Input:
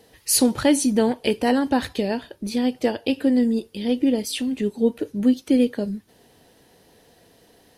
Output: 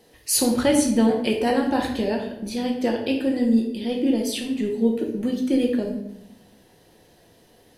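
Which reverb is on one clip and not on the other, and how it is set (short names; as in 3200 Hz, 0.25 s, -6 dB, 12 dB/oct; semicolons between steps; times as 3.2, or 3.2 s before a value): shoebox room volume 230 m³, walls mixed, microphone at 0.95 m; gain -3 dB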